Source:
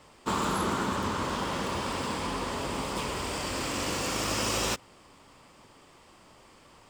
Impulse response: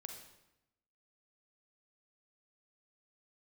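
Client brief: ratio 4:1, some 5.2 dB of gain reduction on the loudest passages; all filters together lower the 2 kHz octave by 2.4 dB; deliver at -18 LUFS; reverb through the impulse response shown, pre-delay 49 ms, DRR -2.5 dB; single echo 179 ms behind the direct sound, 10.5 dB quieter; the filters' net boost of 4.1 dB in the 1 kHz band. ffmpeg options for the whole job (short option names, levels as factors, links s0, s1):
-filter_complex "[0:a]equalizer=f=1000:t=o:g=6,equalizer=f=2000:t=o:g=-5.5,acompressor=threshold=0.0355:ratio=4,aecho=1:1:179:0.299,asplit=2[s0][s1];[1:a]atrim=start_sample=2205,adelay=49[s2];[s1][s2]afir=irnorm=-1:irlink=0,volume=2.24[s3];[s0][s3]amix=inputs=2:normalize=0,volume=2.99"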